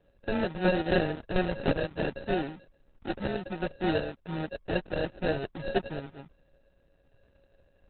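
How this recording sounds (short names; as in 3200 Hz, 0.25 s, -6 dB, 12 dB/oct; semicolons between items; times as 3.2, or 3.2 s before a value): a buzz of ramps at a fixed pitch in blocks of 16 samples; random-step tremolo; aliases and images of a low sample rate 1100 Hz, jitter 0%; Opus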